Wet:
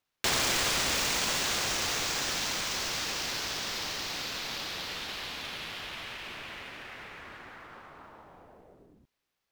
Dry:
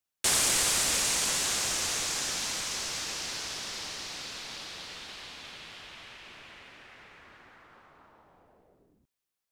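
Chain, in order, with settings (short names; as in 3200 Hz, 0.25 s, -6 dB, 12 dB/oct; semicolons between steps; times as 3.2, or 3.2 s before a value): median filter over 5 samples; in parallel at +3 dB: compressor, threshold -42 dBFS, peak gain reduction 14.5 dB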